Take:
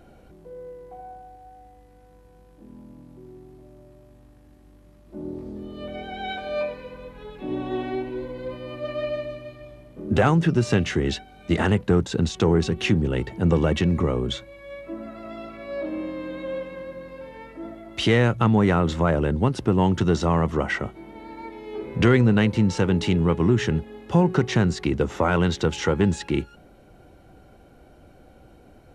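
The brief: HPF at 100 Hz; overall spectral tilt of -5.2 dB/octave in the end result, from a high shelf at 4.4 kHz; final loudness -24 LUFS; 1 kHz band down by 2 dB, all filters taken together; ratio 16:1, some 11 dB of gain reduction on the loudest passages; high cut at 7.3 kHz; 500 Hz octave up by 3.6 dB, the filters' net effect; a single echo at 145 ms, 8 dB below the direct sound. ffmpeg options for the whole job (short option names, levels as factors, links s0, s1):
-af "highpass=100,lowpass=7300,equalizer=f=500:t=o:g=5.5,equalizer=f=1000:t=o:g=-5,highshelf=f=4400:g=5.5,acompressor=threshold=0.0708:ratio=16,aecho=1:1:145:0.398,volume=1.88"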